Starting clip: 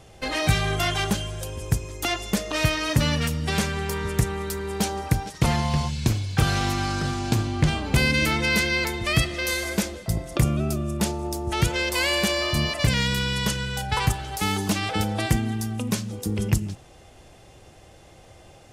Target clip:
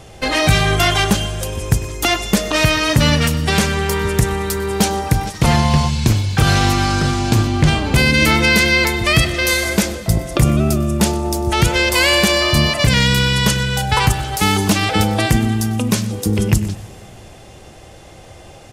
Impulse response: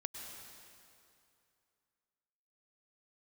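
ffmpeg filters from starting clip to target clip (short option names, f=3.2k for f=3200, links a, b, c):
-filter_complex "[0:a]aecho=1:1:99:0.0891,asplit=2[a][b];[1:a]atrim=start_sample=2205,adelay=121[c];[b][c]afir=irnorm=-1:irlink=0,volume=-16.5dB[d];[a][d]amix=inputs=2:normalize=0,alimiter=level_in=10.5dB:limit=-1dB:release=50:level=0:latency=1,volume=-1dB"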